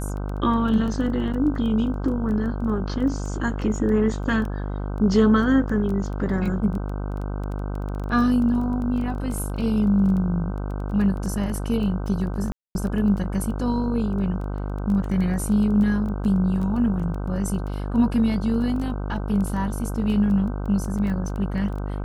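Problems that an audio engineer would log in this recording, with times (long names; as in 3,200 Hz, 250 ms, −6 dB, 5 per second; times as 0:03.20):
mains buzz 50 Hz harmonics 31 −28 dBFS
surface crackle 11 per second −29 dBFS
0:12.52–0:12.75: drop-out 231 ms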